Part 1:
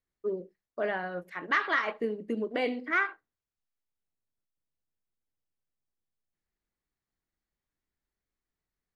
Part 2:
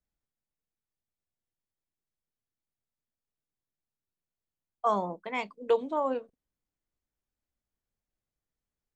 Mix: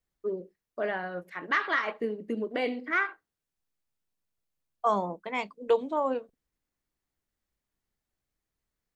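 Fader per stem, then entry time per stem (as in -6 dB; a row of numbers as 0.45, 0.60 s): 0.0, +1.0 dB; 0.00, 0.00 s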